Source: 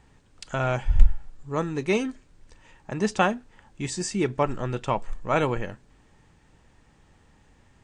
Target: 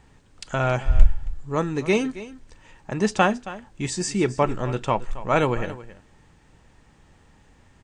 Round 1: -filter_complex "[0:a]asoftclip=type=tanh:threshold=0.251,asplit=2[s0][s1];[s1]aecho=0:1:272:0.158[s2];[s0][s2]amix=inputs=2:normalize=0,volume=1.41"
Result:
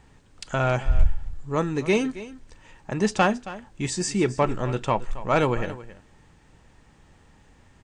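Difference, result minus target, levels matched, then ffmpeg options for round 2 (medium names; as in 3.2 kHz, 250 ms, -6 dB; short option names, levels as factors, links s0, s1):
saturation: distortion +12 dB
-filter_complex "[0:a]asoftclip=type=tanh:threshold=0.794,asplit=2[s0][s1];[s1]aecho=0:1:272:0.158[s2];[s0][s2]amix=inputs=2:normalize=0,volume=1.41"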